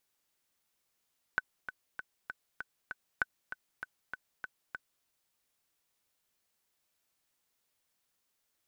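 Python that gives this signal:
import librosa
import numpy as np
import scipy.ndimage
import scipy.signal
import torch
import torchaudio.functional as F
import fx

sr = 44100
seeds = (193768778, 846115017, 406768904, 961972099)

y = fx.click_track(sr, bpm=196, beats=6, bars=2, hz=1510.0, accent_db=11.0, level_db=-15.0)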